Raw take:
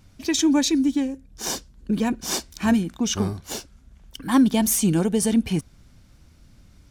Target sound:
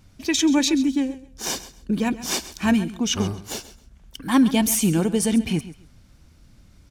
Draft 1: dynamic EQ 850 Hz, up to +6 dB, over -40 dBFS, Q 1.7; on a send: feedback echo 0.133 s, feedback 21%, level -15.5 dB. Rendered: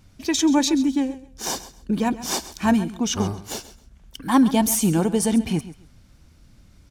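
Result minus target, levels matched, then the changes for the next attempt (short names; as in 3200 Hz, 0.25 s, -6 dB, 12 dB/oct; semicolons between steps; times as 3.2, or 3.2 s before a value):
1000 Hz band +4.0 dB
change: dynamic EQ 2500 Hz, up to +6 dB, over -40 dBFS, Q 1.7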